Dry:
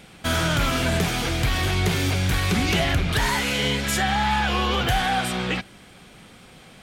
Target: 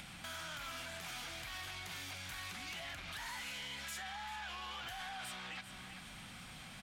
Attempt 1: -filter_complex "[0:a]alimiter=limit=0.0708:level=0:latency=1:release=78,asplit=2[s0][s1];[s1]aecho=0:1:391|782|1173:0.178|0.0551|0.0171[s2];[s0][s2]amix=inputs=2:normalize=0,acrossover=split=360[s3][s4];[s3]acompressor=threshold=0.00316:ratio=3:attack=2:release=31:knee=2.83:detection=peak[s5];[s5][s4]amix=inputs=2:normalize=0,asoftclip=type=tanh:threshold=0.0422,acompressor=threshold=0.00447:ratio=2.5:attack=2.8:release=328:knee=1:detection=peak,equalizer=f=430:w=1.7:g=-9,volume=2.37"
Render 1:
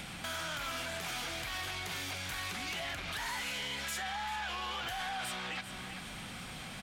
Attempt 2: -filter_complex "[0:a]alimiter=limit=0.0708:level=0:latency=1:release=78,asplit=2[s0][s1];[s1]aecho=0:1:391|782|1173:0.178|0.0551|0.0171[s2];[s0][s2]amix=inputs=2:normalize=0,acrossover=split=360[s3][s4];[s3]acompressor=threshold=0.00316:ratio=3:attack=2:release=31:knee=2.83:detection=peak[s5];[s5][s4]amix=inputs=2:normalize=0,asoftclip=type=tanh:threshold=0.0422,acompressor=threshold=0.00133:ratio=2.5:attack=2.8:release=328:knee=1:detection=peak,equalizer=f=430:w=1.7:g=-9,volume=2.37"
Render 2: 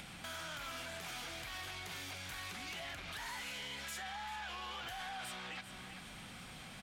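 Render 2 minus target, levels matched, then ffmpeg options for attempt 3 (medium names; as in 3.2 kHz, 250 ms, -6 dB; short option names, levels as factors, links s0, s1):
500 Hz band +2.5 dB
-filter_complex "[0:a]alimiter=limit=0.0708:level=0:latency=1:release=78,asplit=2[s0][s1];[s1]aecho=0:1:391|782|1173:0.178|0.0551|0.0171[s2];[s0][s2]amix=inputs=2:normalize=0,acrossover=split=360[s3][s4];[s3]acompressor=threshold=0.00316:ratio=3:attack=2:release=31:knee=2.83:detection=peak[s5];[s5][s4]amix=inputs=2:normalize=0,asoftclip=type=tanh:threshold=0.0422,acompressor=threshold=0.00133:ratio=2.5:attack=2.8:release=328:knee=1:detection=peak,equalizer=f=430:w=1.7:g=-15.5,volume=2.37"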